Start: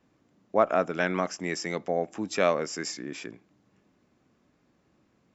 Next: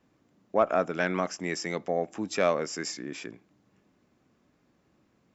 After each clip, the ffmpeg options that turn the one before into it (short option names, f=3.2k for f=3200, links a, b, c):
-af "acontrast=67,volume=-7dB"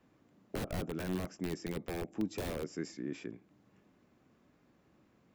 -filter_complex "[0:a]aeval=exprs='(mod(11.9*val(0)+1,2)-1)/11.9':c=same,acrossover=split=440[a][b];[b]acompressor=threshold=-56dB:ratio=2[c];[a][c]amix=inputs=2:normalize=0,equalizer=f=6k:w=0.97:g=-4"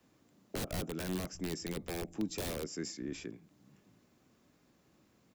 -filter_complex "[0:a]acrossover=split=180|3800[a][b][c];[a]aecho=1:1:622:0.237[d];[c]aeval=exprs='0.0237*sin(PI/2*2*val(0)/0.0237)':c=same[e];[d][b][e]amix=inputs=3:normalize=0,volume=-1dB"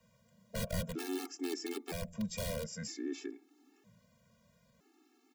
-af "afftfilt=real='re*gt(sin(2*PI*0.52*pts/sr)*(1-2*mod(floor(b*sr/1024/230),2)),0)':imag='im*gt(sin(2*PI*0.52*pts/sr)*(1-2*mod(floor(b*sr/1024/230),2)),0)':win_size=1024:overlap=0.75,volume=3dB"